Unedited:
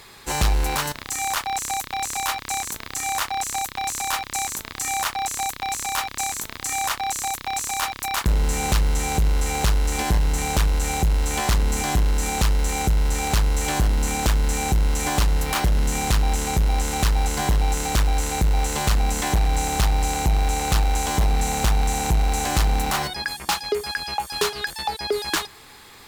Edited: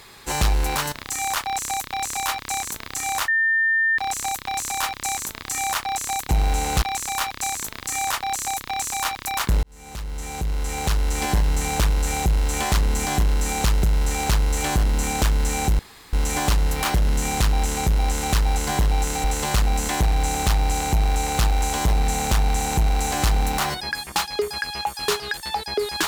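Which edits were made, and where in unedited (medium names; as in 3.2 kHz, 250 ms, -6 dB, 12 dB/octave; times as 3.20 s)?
3.28 s: add tone 1.8 kHz -16.5 dBFS 0.70 s
8.40–10.02 s: fade in
12.60–12.87 s: delete
14.83 s: insert room tone 0.34 s
17.94–18.57 s: delete
20.24–20.77 s: copy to 5.59 s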